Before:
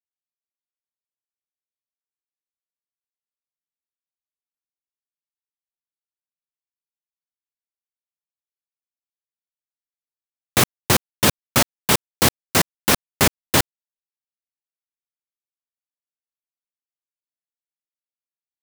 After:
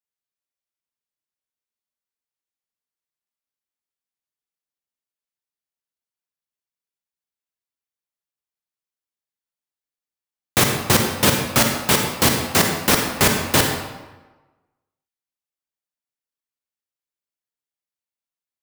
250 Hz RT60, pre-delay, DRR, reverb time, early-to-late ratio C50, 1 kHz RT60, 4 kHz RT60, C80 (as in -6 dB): 1.2 s, 38 ms, 2.5 dB, 1.2 s, 3.5 dB, 1.2 s, 0.85 s, 6.0 dB